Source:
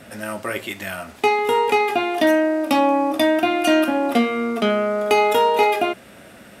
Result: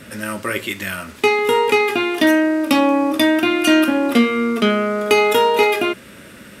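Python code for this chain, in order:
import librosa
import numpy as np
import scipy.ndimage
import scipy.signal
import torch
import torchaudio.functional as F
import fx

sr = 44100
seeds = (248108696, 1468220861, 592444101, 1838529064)

y = fx.peak_eq(x, sr, hz=730.0, db=-14.5, octaves=0.43)
y = y * librosa.db_to_amplitude(5.0)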